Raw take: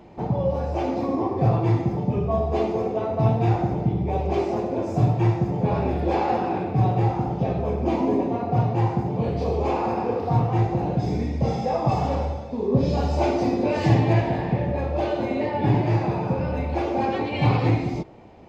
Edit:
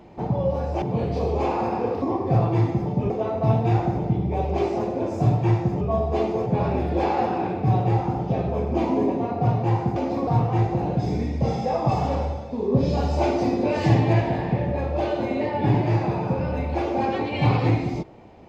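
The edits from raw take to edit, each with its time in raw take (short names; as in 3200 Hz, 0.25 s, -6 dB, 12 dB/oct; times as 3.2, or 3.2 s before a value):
0.82–1.13 swap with 9.07–10.27
2.21–2.86 move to 5.57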